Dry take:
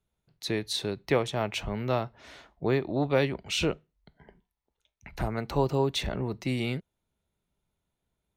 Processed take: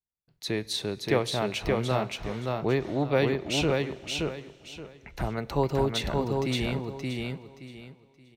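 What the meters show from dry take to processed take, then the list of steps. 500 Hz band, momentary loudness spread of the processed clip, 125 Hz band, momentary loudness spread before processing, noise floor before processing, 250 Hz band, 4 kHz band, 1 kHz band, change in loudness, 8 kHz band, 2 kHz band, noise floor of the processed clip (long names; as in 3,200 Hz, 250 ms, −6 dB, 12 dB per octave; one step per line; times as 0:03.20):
+2.0 dB, 17 LU, +1.5 dB, 9 LU, −84 dBFS, +2.0 dB, +2.0 dB, +2.0 dB, +1.0 dB, +2.0 dB, +2.0 dB, −63 dBFS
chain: noise gate with hold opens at −57 dBFS
repeating echo 574 ms, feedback 25%, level −3 dB
four-comb reverb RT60 2.8 s, combs from 33 ms, DRR 20 dB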